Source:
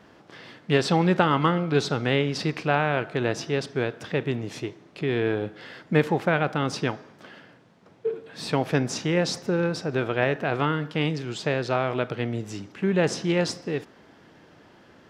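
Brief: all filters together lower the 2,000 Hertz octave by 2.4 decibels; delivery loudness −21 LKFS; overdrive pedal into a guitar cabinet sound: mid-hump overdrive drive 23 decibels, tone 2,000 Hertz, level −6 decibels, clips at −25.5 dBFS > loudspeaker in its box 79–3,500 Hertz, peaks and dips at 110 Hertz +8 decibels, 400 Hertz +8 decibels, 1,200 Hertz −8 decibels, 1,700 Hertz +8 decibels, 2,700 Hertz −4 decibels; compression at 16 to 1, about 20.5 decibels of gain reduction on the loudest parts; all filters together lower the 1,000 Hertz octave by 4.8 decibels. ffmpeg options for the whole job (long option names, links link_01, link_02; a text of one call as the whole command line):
ffmpeg -i in.wav -filter_complex "[0:a]equalizer=frequency=1000:width_type=o:gain=-3.5,equalizer=frequency=2000:width_type=o:gain=-6,acompressor=threshold=-37dB:ratio=16,asplit=2[link_01][link_02];[link_02]highpass=frequency=720:poles=1,volume=23dB,asoftclip=type=tanh:threshold=-25.5dB[link_03];[link_01][link_03]amix=inputs=2:normalize=0,lowpass=frequency=2000:poles=1,volume=-6dB,highpass=79,equalizer=frequency=110:width_type=q:width=4:gain=8,equalizer=frequency=400:width_type=q:width=4:gain=8,equalizer=frequency=1200:width_type=q:width=4:gain=-8,equalizer=frequency=1700:width_type=q:width=4:gain=8,equalizer=frequency=2700:width_type=q:width=4:gain=-4,lowpass=frequency=3500:width=0.5412,lowpass=frequency=3500:width=1.3066,volume=13.5dB" out.wav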